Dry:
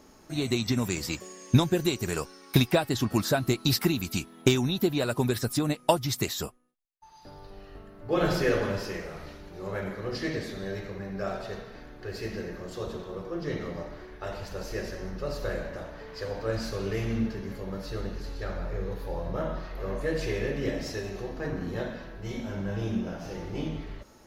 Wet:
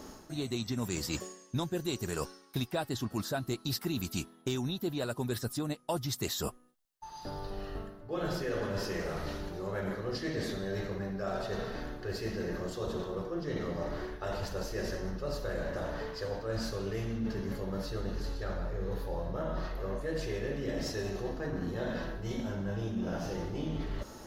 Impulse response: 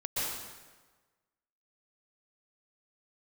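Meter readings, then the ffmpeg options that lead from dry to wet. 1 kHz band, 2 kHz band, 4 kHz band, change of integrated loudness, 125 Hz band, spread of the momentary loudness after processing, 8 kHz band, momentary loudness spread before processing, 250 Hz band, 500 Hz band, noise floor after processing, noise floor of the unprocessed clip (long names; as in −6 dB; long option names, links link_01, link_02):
−5.0 dB, −6.0 dB, −6.5 dB, −6.0 dB, −6.0 dB, 4 LU, −5.0 dB, 14 LU, −6.0 dB, −5.0 dB, −55 dBFS, −54 dBFS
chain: -af "equalizer=frequency=2300:width_type=o:width=0.39:gain=-6,areverse,acompressor=threshold=-40dB:ratio=6,areverse,volume=7.5dB"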